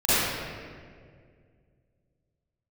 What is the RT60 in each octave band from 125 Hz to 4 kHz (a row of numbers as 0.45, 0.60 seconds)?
3.0, 2.6, 2.4, 1.7, 1.7, 1.2 seconds